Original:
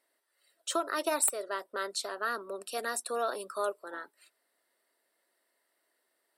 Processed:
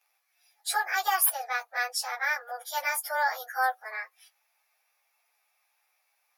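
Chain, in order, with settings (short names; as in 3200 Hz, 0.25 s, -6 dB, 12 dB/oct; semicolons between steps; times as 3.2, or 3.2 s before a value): pitch shift by moving bins +4 st; HPF 710 Hz 24 dB/oct; gain +8.5 dB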